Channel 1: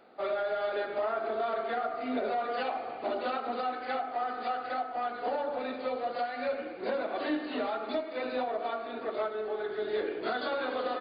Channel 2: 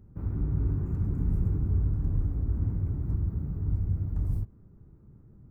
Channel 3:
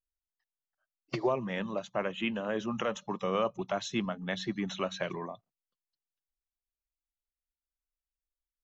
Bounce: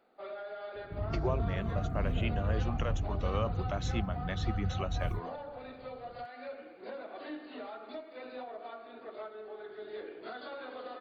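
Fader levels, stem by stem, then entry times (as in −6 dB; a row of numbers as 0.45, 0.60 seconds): −11.0, −5.5, −5.0 decibels; 0.00, 0.75, 0.00 seconds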